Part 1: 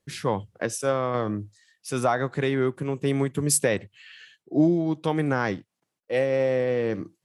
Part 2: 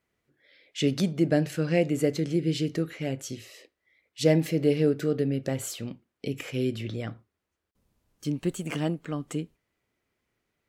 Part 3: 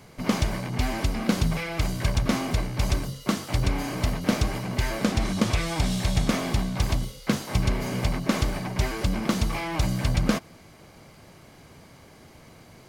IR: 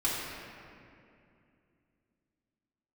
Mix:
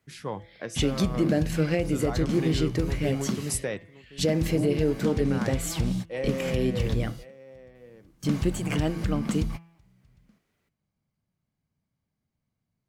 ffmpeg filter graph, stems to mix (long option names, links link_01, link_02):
-filter_complex "[0:a]volume=-8dB,asplit=2[link_01][link_02];[link_02]volume=-17dB[link_03];[1:a]volume=3dB,asplit=2[link_04][link_05];[2:a]lowshelf=frequency=270:width_type=q:width=1.5:gain=8.5,acompressor=threshold=-25dB:ratio=2,volume=-5dB[link_06];[link_05]apad=whole_len=568409[link_07];[link_06][link_07]sidechaingate=range=-33dB:threshold=-44dB:ratio=16:detection=peak[link_08];[link_03]aecho=0:1:1073:1[link_09];[link_01][link_04][link_08][link_09]amix=inputs=4:normalize=0,bandreject=frequency=167.4:width_type=h:width=4,bandreject=frequency=334.8:width_type=h:width=4,bandreject=frequency=502.2:width_type=h:width=4,bandreject=frequency=669.6:width_type=h:width=4,bandreject=frequency=837:width_type=h:width=4,bandreject=frequency=1004.4:width_type=h:width=4,bandreject=frequency=1171.8:width_type=h:width=4,bandreject=frequency=1339.2:width_type=h:width=4,bandreject=frequency=1506.6:width_type=h:width=4,bandreject=frequency=1674:width_type=h:width=4,bandreject=frequency=1841.4:width_type=h:width=4,bandreject=frequency=2008.8:width_type=h:width=4,bandreject=frequency=2176.2:width_type=h:width=4,bandreject=frequency=2343.6:width_type=h:width=4,bandreject=frequency=2511:width_type=h:width=4,bandreject=frequency=2678.4:width_type=h:width=4,bandreject=frequency=2845.8:width_type=h:width=4,bandreject=frequency=3013.2:width_type=h:width=4,bandreject=frequency=3180.6:width_type=h:width=4,bandreject=frequency=3348:width_type=h:width=4,bandreject=frequency=3515.4:width_type=h:width=4,alimiter=limit=-14dB:level=0:latency=1:release=212"